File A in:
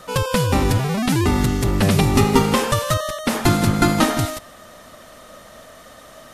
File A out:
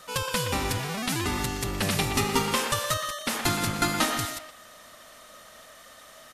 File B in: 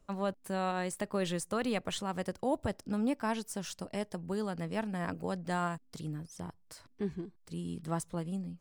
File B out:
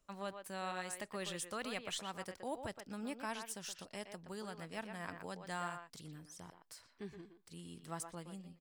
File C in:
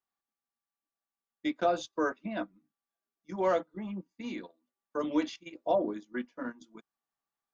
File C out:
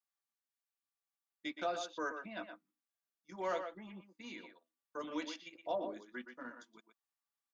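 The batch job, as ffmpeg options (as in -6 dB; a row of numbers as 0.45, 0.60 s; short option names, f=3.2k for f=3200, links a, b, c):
-filter_complex "[0:a]tiltshelf=f=940:g=-5.5,asplit=2[a][b];[b]adelay=120,highpass=300,lowpass=3.4k,asoftclip=type=hard:threshold=-9.5dB,volume=-7dB[c];[a][c]amix=inputs=2:normalize=0,volume=-8dB"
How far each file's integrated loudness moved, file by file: -8.5, -8.5, -9.0 LU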